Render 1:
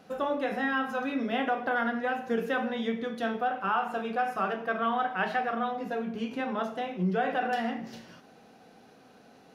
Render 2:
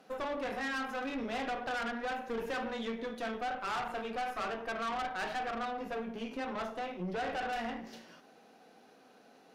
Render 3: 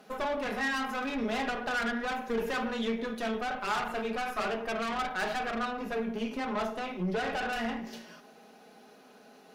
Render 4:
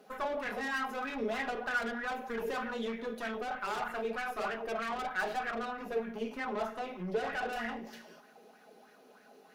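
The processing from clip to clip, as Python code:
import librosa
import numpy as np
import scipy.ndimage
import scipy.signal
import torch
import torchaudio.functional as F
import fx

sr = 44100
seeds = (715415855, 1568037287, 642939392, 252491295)

y1 = scipy.signal.sosfilt(scipy.signal.butter(2, 240.0, 'highpass', fs=sr, output='sos'), x)
y1 = fx.tube_stage(y1, sr, drive_db=32.0, bias=0.65)
y2 = fx.high_shelf(y1, sr, hz=11000.0, db=6.0)
y2 = y2 + 0.46 * np.pad(y2, (int(4.8 * sr / 1000.0), 0))[:len(y2)]
y2 = F.gain(torch.from_numpy(y2), 4.0).numpy()
y3 = fx.high_shelf(y2, sr, hz=11000.0, db=7.0)
y3 = fx.bell_lfo(y3, sr, hz=3.2, low_hz=380.0, high_hz=1900.0, db=11)
y3 = F.gain(torch.from_numpy(y3), -7.5).numpy()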